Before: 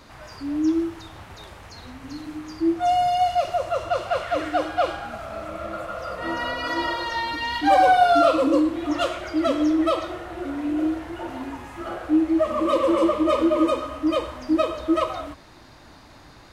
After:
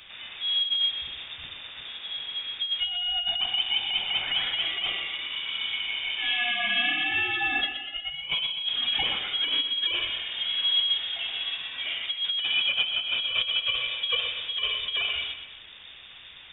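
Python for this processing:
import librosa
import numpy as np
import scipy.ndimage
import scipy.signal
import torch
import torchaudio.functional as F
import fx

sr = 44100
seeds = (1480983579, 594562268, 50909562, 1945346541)

p1 = fx.over_compress(x, sr, threshold_db=-23.0, ratio=-0.5)
p2 = p1 + fx.echo_feedback(p1, sr, ms=124, feedback_pct=49, wet_db=-10, dry=0)
p3 = fx.freq_invert(p2, sr, carrier_hz=3600)
y = F.gain(torch.from_numpy(p3), -3.0).numpy()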